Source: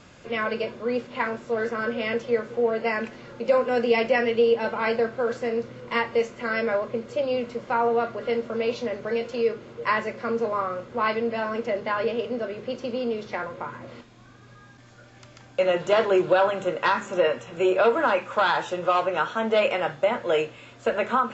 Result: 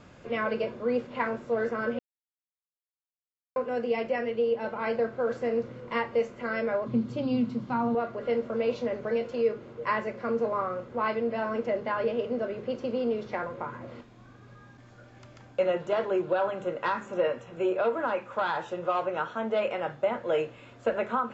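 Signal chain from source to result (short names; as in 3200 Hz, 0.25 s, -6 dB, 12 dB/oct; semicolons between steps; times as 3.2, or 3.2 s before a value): 6.86–7.95 ten-band EQ 125 Hz +10 dB, 250 Hz +12 dB, 500 Hz -10 dB, 1000 Hz +3 dB, 2000 Hz -4 dB, 4000 Hz +7 dB; vocal rider within 3 dB 0.5 s; high shelf 2100 Hz -9 dB; 1.99–3.56 mute; gain -3.5 dB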